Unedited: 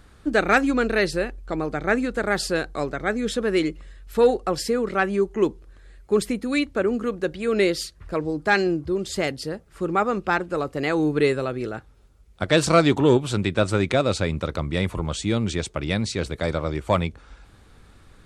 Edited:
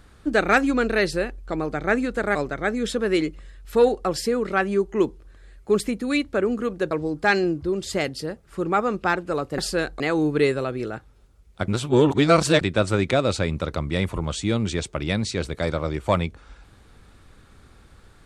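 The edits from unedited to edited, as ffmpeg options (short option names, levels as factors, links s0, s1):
-filter_complex "[0:a]asplit=7[s0][s1][s2][s3][s4][s5][s6];[s0]atrim=end=2.352[s7];[s1]atrim=start=2.768:end=7.332[s8];[s2]atrim=start=8.138:end=10.812[s9];[s3]atrim=start=2.348:end=2.772[s10];[s4]atrim=start=10.808:end=12.492[s11];[s5]atrim=start=12.488:end=13.422,asetpts=PTS-STARTPTS,areverse[s12];[s6]atrim=start=13.418[s13];[s7][s8]acrossfade=d=0.004:c1=hsin:c2=hsin[s14];[s14][s9]acrossfade=d=0.004:c1=hsin:c2=hsin[s15];[s15][s10]acrossfade=d=0.004:c1=hsin:c2=hsin[s16];[s16][s11]acrossfade=d=0.004:c1=hsin:c2=hsin[s17];[s17][s12]acrossfade=d=0.004:c1=hsin:c2=hsin[s18];[s18][s13]acrossfade=d=0.004:c1=hsin:c2=hsin"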